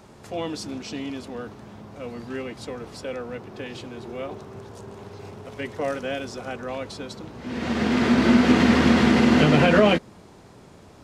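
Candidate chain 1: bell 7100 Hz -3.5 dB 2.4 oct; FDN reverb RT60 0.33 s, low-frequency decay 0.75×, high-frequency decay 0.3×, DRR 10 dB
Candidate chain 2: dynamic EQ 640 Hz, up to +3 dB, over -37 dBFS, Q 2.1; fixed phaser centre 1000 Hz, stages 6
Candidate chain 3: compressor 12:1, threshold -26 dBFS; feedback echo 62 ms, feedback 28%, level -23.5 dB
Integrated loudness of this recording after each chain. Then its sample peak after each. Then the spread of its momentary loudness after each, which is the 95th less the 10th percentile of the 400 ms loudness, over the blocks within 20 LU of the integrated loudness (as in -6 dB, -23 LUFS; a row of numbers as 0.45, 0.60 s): -21.5, -26.0, -33.0 LUFS; -4.0, -6.0, -17.5 dBFS; 22, 22, 12 LU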